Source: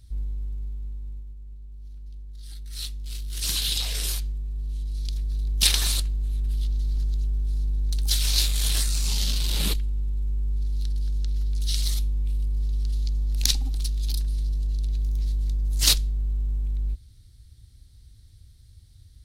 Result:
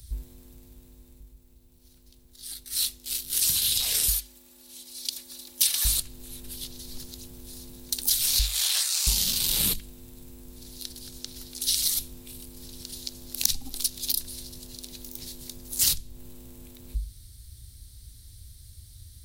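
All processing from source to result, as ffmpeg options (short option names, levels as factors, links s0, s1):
-filter_complex "[0:a]asettb=1/sr,asplit=3[s0][s1][s2];[s0]atrim=end=4.084[s3];[s1]atrim=start=4.08:end=5.85,asetpts=PTS-STARTPTS,afade=t=in:d=0.004:c=qsin,afade=t=out:st=1.766:d=0.004:c=qsin,highpass=f=650:p=1,aecho=1:1:3.5:0.65,atrim=end_sample=78057[s4];[s2]atrim=start=5.846[s5];[s3][s4]acrossfade=d=0.004:c1=hsin:c2=qsin[s6];[s6][s5]acrossfade=d=0.004:c1=qsin:c2=hsin,asettb=1/sr,asplit=3[s7][s8][s9];[s7]atrim=end=8.394[s10];[s8]atrim=start=8.39:end=9.07,asetpts=PTS-STARTPTS,afade=t=in:d=0.004:c=qsin,afade=t=out:st=0.676:d=0.004:c=qsin,acrossover=split=6600[s11][s12];[s12]acompressor=threshold=0.00891:ratio=4:attack=1:release=60[s13];[s11][s13]amix=inputs=2:normalize=0,highpass=f=620:w=0.5412,highpass=f=620:w=1.3066[s14];[s9]atrim=start=9.066[s15];[s10][s14]acrossfade=d=0.004:c1=hsin:c2=qsin[s16];[s16][s15]acrossfade=d=0.004:c1=qsin:c2=hsin,aemphasis=mode=production:type=50fm,bandreject=f=50:t=h:w=6,bandreject=f=100:t=h:w=6,bandreject=f=150:t=h:w=6,bandreject=f=200:t=h:w=6,acrossover=split=160[s17][s18];[s18]acompressor=threshold=0.0562:ratio=8[s19];[s17][s19]amix=inputs=2:normalize=0,volume=1.58"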